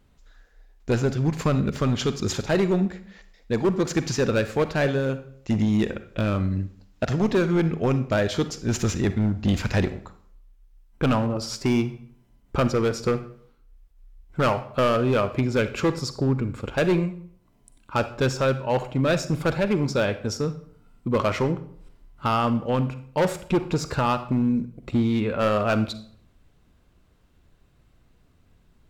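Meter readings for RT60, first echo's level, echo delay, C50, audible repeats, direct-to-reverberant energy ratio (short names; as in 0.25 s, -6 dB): 0.60 s, none, none, 13.0 dB, none, 11.0 dB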